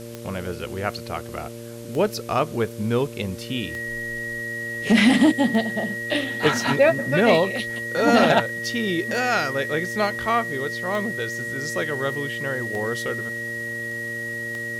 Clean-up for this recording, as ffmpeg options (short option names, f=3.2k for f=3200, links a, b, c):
-af "adeclick=t=4,bandreject=f=116.7:t=h:w=4,bandreject=f=233.4:t=h:w=4,bandreject=f=350.1:t=h:w=4,bandreject=f=466.8:t=h:w=4,bandreject=f=583.5:t=h:w=4,bandreject=f=1.9k:w=30,afwtdn=0.005"